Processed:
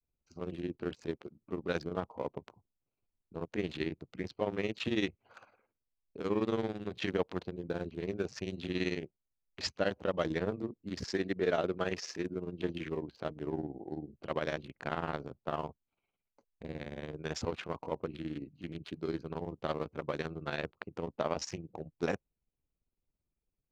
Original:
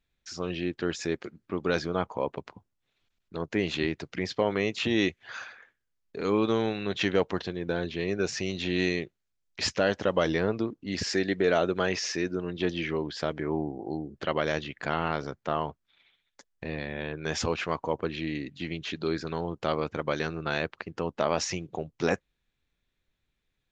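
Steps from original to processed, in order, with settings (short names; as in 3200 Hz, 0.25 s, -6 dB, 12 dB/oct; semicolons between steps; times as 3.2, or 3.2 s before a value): Wiener smoothing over 25 samples; grains 83 ms, grains 18/s, spray 12 ms, pitch spread up and down by 0 st; gain -4 dB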